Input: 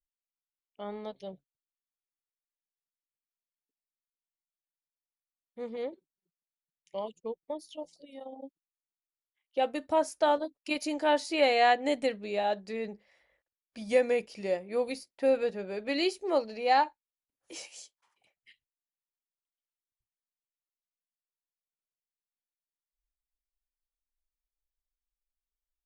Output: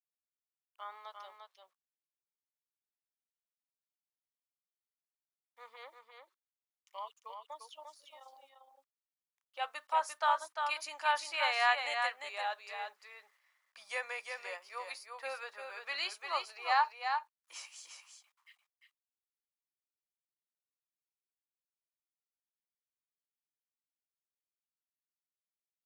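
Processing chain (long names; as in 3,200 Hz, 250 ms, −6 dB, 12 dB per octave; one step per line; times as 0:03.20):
bit reduction 12 bits
four-pole ladder high-pass 1,000 Hz, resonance 60%
on a send: single-tap delay 348 ms −5.5 dB
on the sum: level +6.5 dB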